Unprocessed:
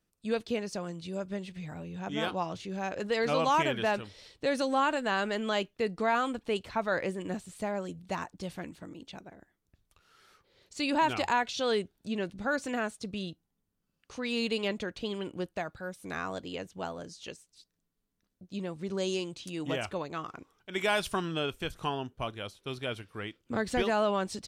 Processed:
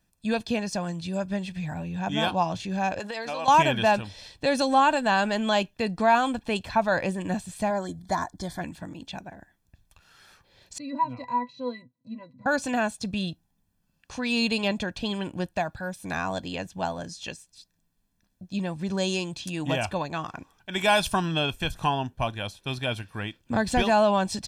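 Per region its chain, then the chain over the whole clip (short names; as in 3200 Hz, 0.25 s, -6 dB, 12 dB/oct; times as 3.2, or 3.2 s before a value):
2.99–3.48 HPF 310 Hz + compressor 12:1, threshold -33 dBFS
7.7–8.61 Butterworth band-stop 2700 Hz, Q 2.6 + comb 2.9 ms, depth 36%
10.78–12.46 HPF 140 Hz 24 dB/oct + octave resonator B, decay 0.11 s
whole clip: comb 1.2 ms, depth 56%; dynamic EQ 1800 Hz, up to -5 dB, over -45 dBFS, Q 2.7; gain +6.5 dB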